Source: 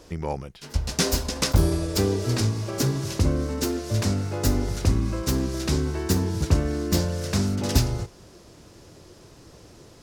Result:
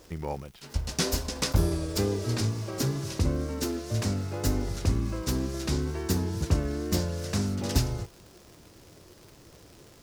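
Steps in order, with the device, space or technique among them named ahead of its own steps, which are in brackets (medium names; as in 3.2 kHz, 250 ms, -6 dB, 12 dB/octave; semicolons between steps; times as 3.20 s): vinyl LP (wow and flutter; crackle 140 per s -36 dBFS; white noise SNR 38 dB); trim -4.5 dB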